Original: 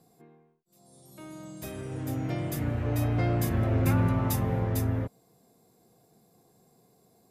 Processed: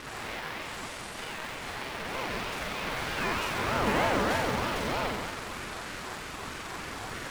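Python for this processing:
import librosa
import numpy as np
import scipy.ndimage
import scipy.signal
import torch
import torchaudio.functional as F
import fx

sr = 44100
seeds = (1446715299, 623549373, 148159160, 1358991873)

p1 = fx.delta_mod(x, sr, bps=64000, step_db=-31.0)
p2 = fx.bandpass_q(p1, sr, hz=1600.0, q=0.97)
p3 = p2 + 0.4 * np.pad(p2, (int(7.4 * sr / 1000.0), 0))[:len(p2)]
p4 = fx.quant_dither(p3, sr, seeds[0], bits=6, dither='none')
p5 = p3 + (p4 * librosa.db_to_amplitude(-12.0))
p6 = fx.room_flutter(p5, sr, wall_m=7.8, rt60_s=1.5)
p7 = fx.ring_lfo(p6, sr, carrier_hz=550.0, swing_pct=45, hz=3.2)
y = p7 * librosa.db_to_amplitude(5.0)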